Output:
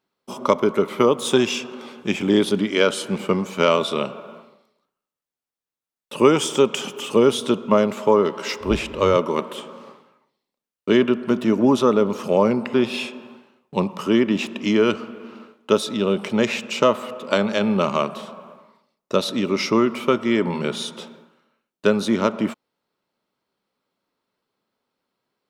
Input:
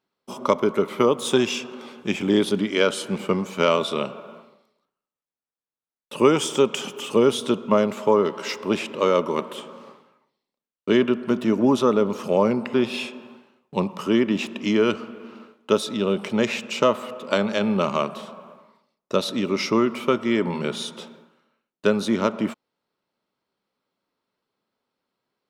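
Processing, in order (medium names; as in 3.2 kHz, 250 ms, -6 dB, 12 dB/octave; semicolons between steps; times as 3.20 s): 8.60–9.17 s: octave divider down 2 oct, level -4 dB; trim +2 dB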